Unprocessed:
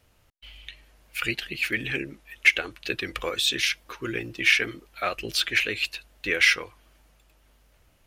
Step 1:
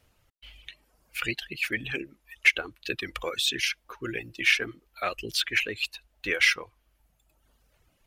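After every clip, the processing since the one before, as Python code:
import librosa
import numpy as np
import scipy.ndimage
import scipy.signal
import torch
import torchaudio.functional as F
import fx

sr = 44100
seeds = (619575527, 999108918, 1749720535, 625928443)

y = fx.dereverb_blind(x, sr, rt60_s=1.1)
y = y * librosa.db_to_amplitude(-2.0)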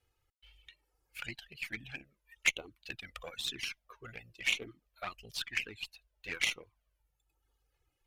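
y = fx.cheby_harmonics(x, sr, harmonics=(3, 6, 7, 8), levels_db=(-14, -34, -39, -32), full_scale_db=-6.5)
y = fx.env_flanger(y, sr, rest_ms=2.4, full_db=-26.5)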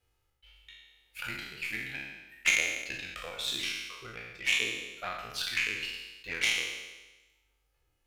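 y = fx.spec_trails(x, sr, decay_s=1.15)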